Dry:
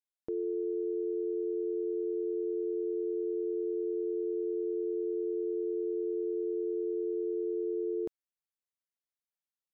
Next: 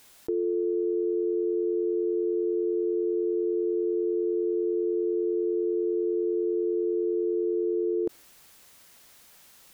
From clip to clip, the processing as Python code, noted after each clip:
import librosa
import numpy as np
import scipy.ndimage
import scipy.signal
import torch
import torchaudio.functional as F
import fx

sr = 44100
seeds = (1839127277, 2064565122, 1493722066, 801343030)

y = fx.dynamic_eq(x, sr, hz=360.0, q=1.3, threshold_db=-47.0, ratio=4.0, max_db=7)
y = fx.env_flatten(y, sr, amount_pct=100)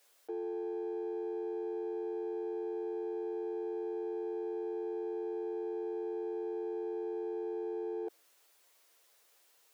y = fx.lower_of_two(x, sr, delay_ms=8.8)
y = fx.ladder_highpass(y, sr, hz=340.0, resonance_pct=30)
y = F.gain(torch.from_numpy(y), -4.5).numpy()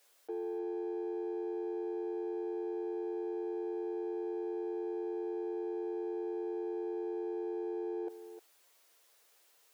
y = x + 10.0 ** (-11.5 / 20.0) * np.pad(x, (int(306 * sr / 1000.0), 0))[:len(x)]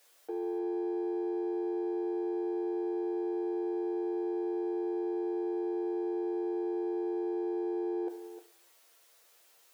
y = fx.rev_fdn(x, sr, rt60_s=0.73, lf_ratio=0.75, hf_ratio=0.8, size_ms=61.0, drr_db=6.5)
y = F.gain(torch.from_numpy(y), 3.0).numpy()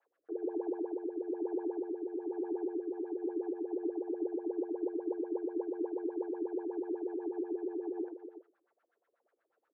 y = fx.rotary_switch(x, sr, hz=1.1, then_hz=8.0, switch_at_s=2.71)
y = fx.filter_lfo_lowpass(y, sr, shape='sine', hz=8.2, low_hz=290.0, high_hz=1600.0, q=5.2)
y = F.gain(torch.from_numpy(y), -8.5).numpy()